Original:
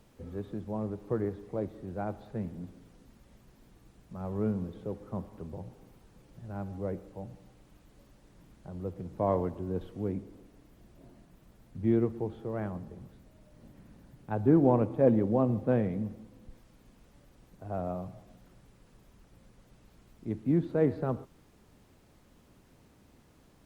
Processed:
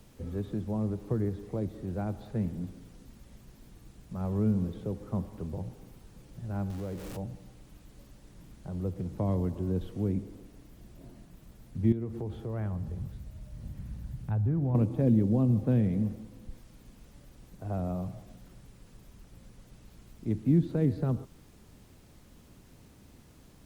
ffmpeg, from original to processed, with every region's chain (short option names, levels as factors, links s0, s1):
-filter_complex "[0:a]asettb=1/sr,asplit=3[s0][s1][s2];[s0]atrim=end=6.704[s3];[s1]atrim=start=6.7:end=7.17,asetpts=PTS-STARTPTS,afade=t=in:d=0.004:c=qsin,afade=t=out:st=0.466:d=0.004:c=qsin,aeval=exprs='val(0)+0.5*0.00794*sgn(val(0))':c=same,acompressor=threshold=0.00794:ratio=2:attack=3.2:release=140:knee=1:detection=peak[s4];[s2]atrim=start=7.166[s5];[s3][s4]acrossfade=d=0.004:c1=hsin:c2=qsin[s6];[s6][s5]acrossfade=d=0.004:c1=qsin:c2=hsin,asettb=1/sr,asplit=3[s7][s8][s9];[s7]atrim=end=11.924[s10];[s8]atrim=start=11.92:end=14.75,asetpts=PTS-STARTPTS,afade=t=in:d=0.004:c=qsin,afade=t=out:st=2.826:d=0.004:c=qsin,highpass=46,asubboost=boost=10.5:cutoff=120,acompressor=threshold=0.0141:ratio=2.5:attack=3.2:release=140:knee=1:detection=peak[s11];[s9]atrim=start=14.746[s12];[s10][s11]acrossfade=d=0.004:c1=hsin:c2=qsin[s13];[s13][s12]acrossfade=d=0.004:c1=qsin:c2=hsin,equalizer=f=830:w=0.3:g=-6,acrossover=split=300|3000[s14][s15][s16];[s15]acompressor=threshold=0.00708:ratio=6[s17];[s14][s17][s16]amix=inputs=3:normalize=0,volume=2.37"